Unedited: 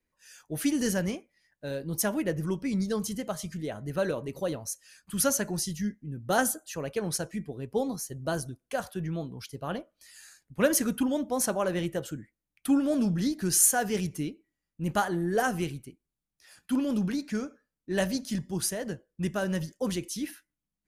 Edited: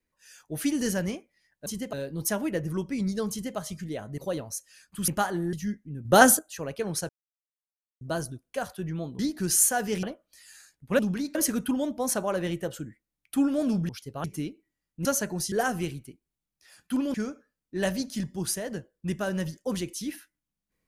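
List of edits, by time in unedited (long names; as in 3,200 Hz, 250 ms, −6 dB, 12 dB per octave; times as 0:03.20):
0:03.03–0:03.30: duplicate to 0:01.66
0:03.91–0:04.33: remove
0:05.23–0:05.70: swap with 0:14.86–0:15.31
0:06.22–0:06.56: clip gain +9 dB
0:07.26–0:08.18: silence
0:09.36–0:09.71: swap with 0:13.21–0:14.05
0:16.93–0:17.29: move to 0:10.67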